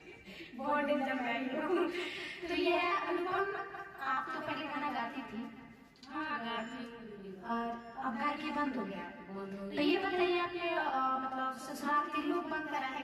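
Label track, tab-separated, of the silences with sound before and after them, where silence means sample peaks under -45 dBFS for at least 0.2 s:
5.710000	6.030000	silence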